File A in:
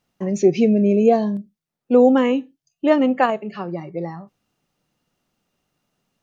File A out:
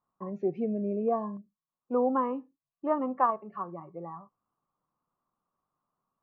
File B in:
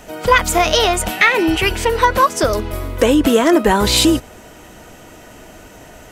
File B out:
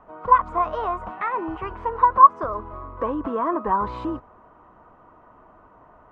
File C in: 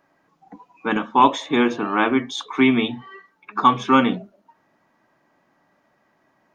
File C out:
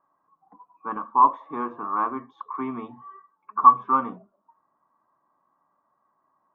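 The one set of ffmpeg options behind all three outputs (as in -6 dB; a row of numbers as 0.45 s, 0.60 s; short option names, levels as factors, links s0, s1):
-af "lowpass=f=1100:t=q:w=10,volume=0.168"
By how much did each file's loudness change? -13.0 LU, -7.0 LU, -3.0 LU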